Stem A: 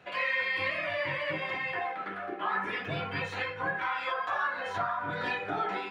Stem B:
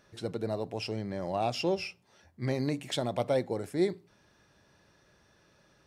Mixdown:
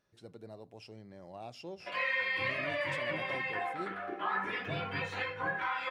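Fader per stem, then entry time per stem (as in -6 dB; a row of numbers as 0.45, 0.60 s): -2.5, -15.5 dB; 1.80, 0.00 s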